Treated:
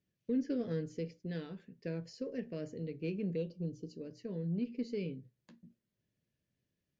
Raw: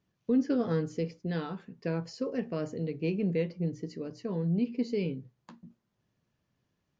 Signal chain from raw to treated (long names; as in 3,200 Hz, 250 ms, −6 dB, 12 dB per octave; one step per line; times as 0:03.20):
0:03.36–0:04.01: Butterworth band-reject 2,000 Hz, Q 1.5
harmonic generator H 8 −38 dB, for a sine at −18 dBFS
flat-topped bell 1,000 Hz −10.5 dB 1.1 octaves
level −7 dB